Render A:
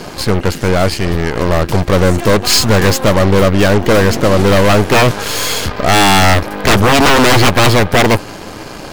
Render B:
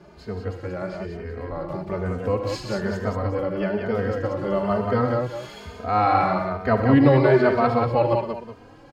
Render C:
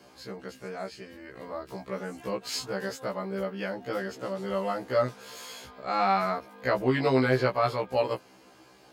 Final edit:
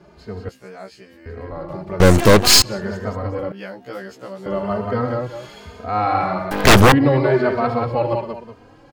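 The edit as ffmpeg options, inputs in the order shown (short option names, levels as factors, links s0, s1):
-filter_complex "[2:a]asplit=2[s0][s1];[0:a]asplit=2[s2][s3];[1:a]asplit=5[s4][s5][s6][s7][s8];[s4]atrim=end=0.492[s9];[s0]atrim=start=0.488:end=1.262[s10];[s5]atrim=start=1.258:end=2.002[s11];[s2]atrim=start=1.998:end=2.622[s12];[s6]atrim=start=2.618:end=3.522[s13];[s1]atrim=start=3.518:end=4.462[s14];[s7]atrim=start=4.458:end=6.512[s15];[s3]atrim=start=6.508:end=6.922[s16];[s8]atrim=start=6.918[s17];[s9][s10]acrossfade=d=0.004:c1=hsin:c2=hsin[s18];[s18][s11]acrossfade=d=0.004:c1=hsin:c2=hsin[s19];[s19][s12]acrossfade=d=0.004:c1=hsin:c2=hsin[s20];[s20][s13]acrossfade=d=0.004:c1=hsin:c2=hsin[s21];[s21][s14]acrossfade=d=0.004:c1=hsin:c2=hsin[s22];[s22][s15]acrossfade=d=0.004:c1=hsin:c2=hsin[s23];[s23][s16]acrossfade=d=0.004:c1=hsin:c2=hsin[s24];[s24][s17]acrossfade=d=0.004:c1=hsin:c2=hsin"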